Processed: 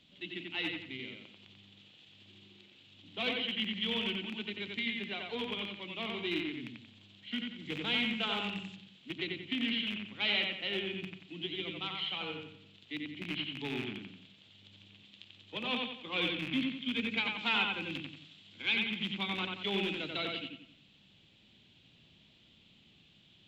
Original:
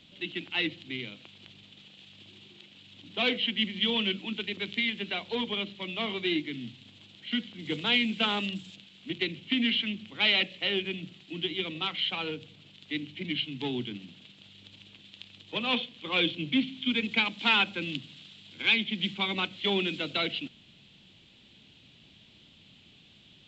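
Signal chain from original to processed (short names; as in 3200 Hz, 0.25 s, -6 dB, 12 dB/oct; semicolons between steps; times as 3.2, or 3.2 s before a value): rattling part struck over -36 dBFS, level -22 dBFS; on a send: analogue delay 90 ms, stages 2048, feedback 39%, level -3 dB; on the sum: gain -7.5 dB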